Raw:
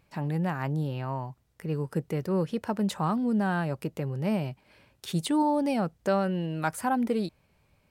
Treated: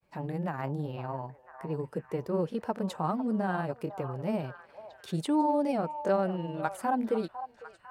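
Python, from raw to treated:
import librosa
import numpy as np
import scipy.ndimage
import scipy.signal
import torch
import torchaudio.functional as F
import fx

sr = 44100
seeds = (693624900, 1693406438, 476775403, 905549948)

y = fx.granulator(x, sr, seeds[0], grain_ms=100.0, per_s=20.0, spray_ms=17.0, spread_st=0)
y = fx.peak_eq(y, sr, hz=580.0, db=7.5, octaves=2.6)
y = fx.echo_stepped(y, sr, ms=501, hz=860.0, octaves=0.7, feedback_pct=70, wet_db=-9.0)
y = y * librosa.db_to_amplitude(-6.5)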